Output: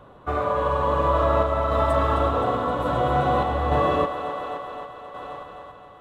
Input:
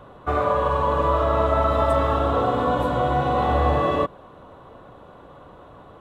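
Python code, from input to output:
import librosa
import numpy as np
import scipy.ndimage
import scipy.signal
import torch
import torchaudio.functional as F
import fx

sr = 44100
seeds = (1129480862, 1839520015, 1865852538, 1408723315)

y = fx.echo_thinned(x, sr, ms=262, feedback_pct=84, hz=210.0, wet_db=-11.0)
y = fx.tremolo_random(y, sr, seeds[0], hz=3.5, depth_pct=55)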